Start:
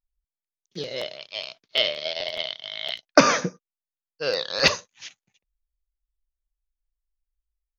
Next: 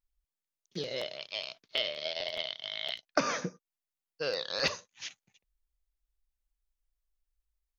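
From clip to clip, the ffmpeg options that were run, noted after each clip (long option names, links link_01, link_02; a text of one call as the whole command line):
ffmpeg -i in.wav -af "acompressor=threshold=-36dB:ratio=2" out.wav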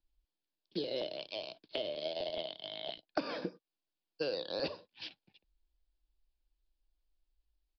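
ffmpeg -i in.wav -filter_complex "[0:a]aresample=11025,aresample=44100,equalizer=frequency=125:width_type=o:width=0.33:gain=-6,equalizer=frequency=315:width_type=o:width=0.33:gain=9,equalizer=frequency=1250:width_type=o:width=0.33:gain=-11,equalizer=frequency=2000:width_type=o:width=0.33:gain=-11,acrossover=split=270|990[link_01][link_02][link_03];[link_01]acompressor=threshold=-51dB:ratio=4[link_04];[link_02]acompressor=threshold=-39dB:ratio=4[link_05];[link_03]acompressor=threshold=-46dB:ratio=4[link_06];[link_04][link_05][link_06]amix=inputs=3:normalize=0,volume=3.5dB" out.wav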